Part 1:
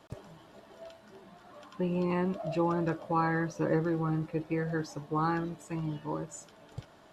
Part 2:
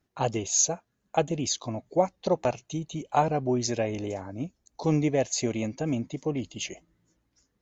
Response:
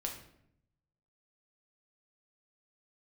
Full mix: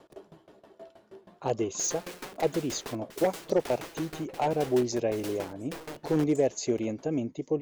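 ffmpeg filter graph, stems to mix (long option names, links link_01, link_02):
-filter_complex "[0:a]aeval=exprs='(mod(50.1*val(0)+1,2)-1)/50.1':channel_layout=same,aeval=exprs='val(0)*pow(10,-20*if(lt(mod(6.3*n/s,1),2*abs(6.3)/1000),1-mod(6.3*n/s,1)/(2*abs(6.3)/1000),(mod(6.3*n/s,1)-2*abs(6.3)/1000)/(1-2*abs(6.3)/1000))/20)':channel_layout=same,volume=0dB,asplit=2[link_01][link_02];[link_02]volume=-19dB[link_03];[1:a]aeval=exprs='0.158*(abs(mod(val(0)/0.158+3,4)-2)-1)':channel_layout=same,adelay=1250,volume=-6.5dB[link_04];[2:a]atrim=start_sample=2205[link_05];[link_03][link_05]afir=irnorm=-1:irlink=0[link_06];[link_01][link_04][link_06]amix=inputs=3:normalize=0,equalizer=frequency=400:width_type=o:width=1.2:gain=10"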